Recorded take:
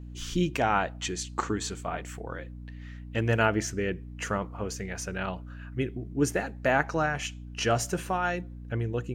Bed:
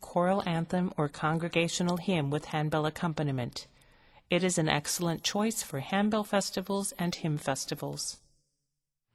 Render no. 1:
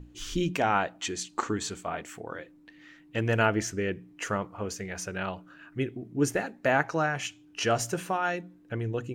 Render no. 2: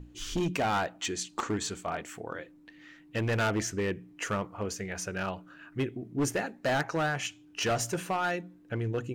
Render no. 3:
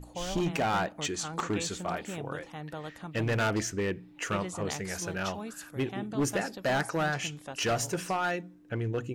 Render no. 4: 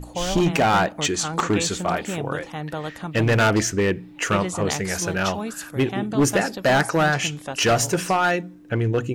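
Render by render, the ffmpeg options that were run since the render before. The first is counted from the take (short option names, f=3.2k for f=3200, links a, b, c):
-af "bandreject=f=60:t=h:w=6,bandreject=f=120:t=h:w=6,bandreject=f=180:t=h:w=6,bandreject=f=240:t=h:w=6"
-af "asoftclip=type=hard:threshold=-24dB"
-filter_complex "[1:a]volume=-11dB[a];[0:a][a]amix=inputs=2:normalize=0"
-af "volume=10dB"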